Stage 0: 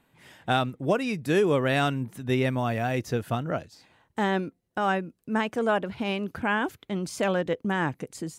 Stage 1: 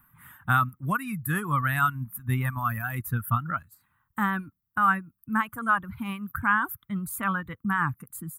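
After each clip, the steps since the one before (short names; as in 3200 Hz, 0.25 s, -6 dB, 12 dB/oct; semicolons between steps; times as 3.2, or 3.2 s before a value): EQ curve 110 Hz 0 dB, 220 Hz -7 dB, 450 Hz -28 dB, 670 Hz -22 dB, 1200 Hz +5 dB, 2500 Hz -14 dB, 3600 Hz -17 dB, 5400 Hz -29 dB, 7900 Hz -8 dB, 13000 Hz +13 dB; reverb removal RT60 1.8 s; gain +7 dB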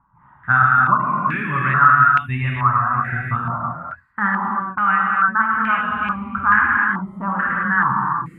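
non-linear reverb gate 0.39 s flat, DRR -4 dB; stepped low-pass 2.3 Hz 920–2600 Hz; gain -1 dB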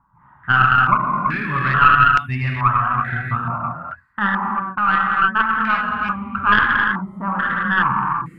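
tracing distortion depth 0.06 ms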